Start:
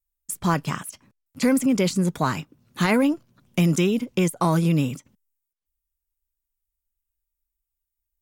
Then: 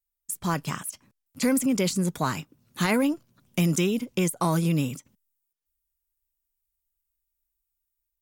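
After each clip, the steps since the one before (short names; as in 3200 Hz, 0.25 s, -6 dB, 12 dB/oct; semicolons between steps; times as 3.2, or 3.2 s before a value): AGC gain up to 4.5 dB; high shelf 5400 Hz +7.5 dB; gain -8 dB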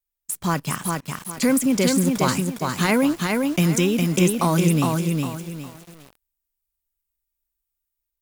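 in parallel at -4.5 dB: requantised 6-bit, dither none; on the sum: lo-fi delay 0.408 s, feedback 35%, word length 7-bit, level -3 dB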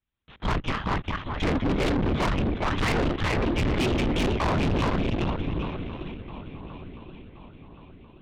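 LPC vocoder at 8 kHz whisper; swung echo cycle 1.074 s, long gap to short 3:1, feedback 42%, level -19.5 dB; tube stage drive 29 dB, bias 0.55; gain +7 dB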